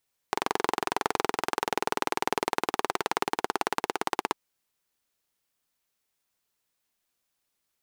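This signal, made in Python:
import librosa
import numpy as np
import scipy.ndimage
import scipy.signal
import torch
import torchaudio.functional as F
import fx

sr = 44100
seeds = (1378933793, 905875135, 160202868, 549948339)

y = fx.engine_single_rev(sr, seeds[0], length_s=4.0, rpm=2700, resonances_hz=(410.0, 820.0), end_rpm=2000)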